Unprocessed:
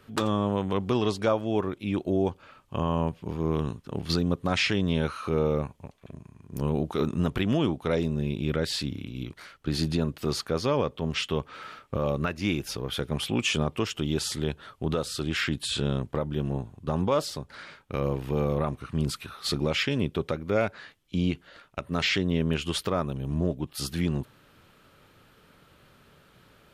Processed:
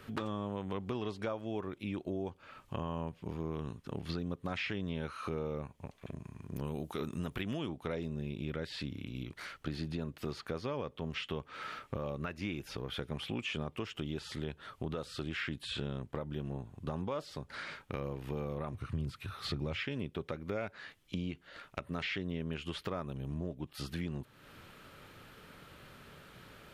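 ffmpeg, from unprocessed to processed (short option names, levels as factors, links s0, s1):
-filter_complex "[0:a]asettb=1/sr,asplit=3[s0][s1][s2];[s0]atrim=end=6.564[s3];[s1]atrim=start=6.56:end=7.69,asetpts=PTS-STARTPTS,afade=t=in:d=0.004:c=qsin,afade=t=out:st=1.126:d=0.004:c=qsin,aemphasis=mode=production:type=75fm[s4];[s2]atrim=start=7.686[s5];[s3][s4]acrossfade=d=0.004:c1=hsin:c2=qsin[s6];[s6][s5]acrossfade=d=0.004:c1=qsin:c2=hsin,asettb=1/sr,asplit=3[s7][s8][s9];[s7]atrim=end=18.734[s10];[s8]atrim=start=18.73:end=19.83,asetpts=PTS-STARTPTS,afade=t=in:d=0.004:c=qsin,afade=t=out:st=1.096:d=0.004:c=qsin,equalizer=f=96:w=1.5:g=13.5[s11];[s9]atrim=start=19.826[s12];[s10][s11]acrossfade=d=0.004:c1=hsin:c2=qsin[s13];[s13][s12]acrossfade=d=0.004:c1=qsin:c2=hsin,acrossover=split=3700[s14][s15];[s15]acompressor=threshold=0.00447:ratio=4:attack=1:release=60[s16];[s14][s16]amix=inputs=2:normalize=0,equalizer=f=2000:w=1.5:g=2.5,acompressor=threshold=0.00794:ratio=3,volume=1.33"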